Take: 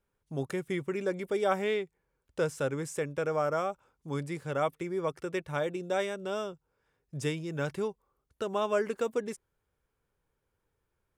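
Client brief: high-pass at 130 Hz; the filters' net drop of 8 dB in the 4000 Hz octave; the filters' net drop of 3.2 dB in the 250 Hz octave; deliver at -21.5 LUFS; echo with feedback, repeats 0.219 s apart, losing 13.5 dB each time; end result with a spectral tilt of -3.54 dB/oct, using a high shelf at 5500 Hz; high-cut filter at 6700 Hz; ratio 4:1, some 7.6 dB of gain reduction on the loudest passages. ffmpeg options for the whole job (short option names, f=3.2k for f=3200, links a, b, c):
-af "highpass=130,lowpass=6.7k,equalizer=f=250:t=o:g=-4.5,equalizer=f=4k:t=o:g=-8.5,highshelf=f=5.5k:g=-5,acompressor=threshold=-34dB:ratio=4,aecho=1:1:219|438:0.211|0.0444,volume=18dB"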